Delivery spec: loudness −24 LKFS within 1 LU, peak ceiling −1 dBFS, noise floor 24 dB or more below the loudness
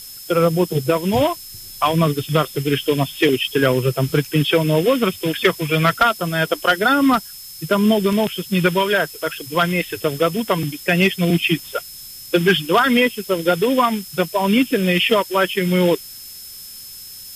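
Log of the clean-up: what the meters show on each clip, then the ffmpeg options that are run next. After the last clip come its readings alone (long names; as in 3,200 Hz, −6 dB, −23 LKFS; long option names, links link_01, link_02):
interfering tone 5,200 Hz; level of the tone −39 dBFS; background noise floor −37 dBFS; target noise floor −42 dBFS; integrated loudness −18.0 LKFS; sample peak −4.5 dBFS; target loudness −24.0 LKFS
→ -af "bandreject=frequency=5200:width=30"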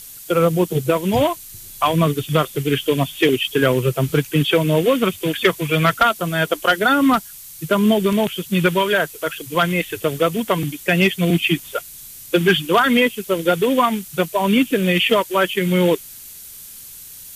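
interfering tone none found; background noise floor −38 dBFS; target noise floor −42 dBFS
→ -af "afftdn=noise_reduction=6:noise_floor=-38"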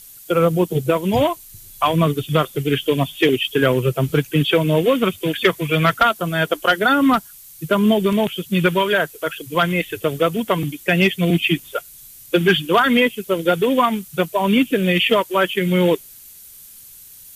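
background noise floor −42 dBFS; target noise floor −43 dBFS
→ -af "afftdn=noise_reduction=6:noise_floor=-42"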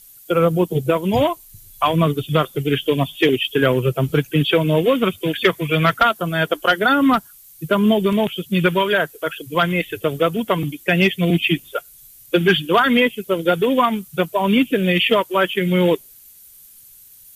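background noise floor −46 dBFS; integrated loudness −18.5 LKFS; sample peak −4.5 dBFS; target loudness −24.0 LKFS
→ -af "volume=-5.5dB"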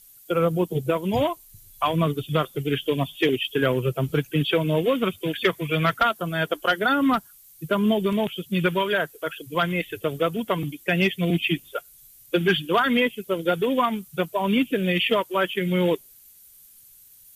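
integrated loudness −24.0 LKFS; sample peak −10.0 dBFS; background noise floor −51 dBFS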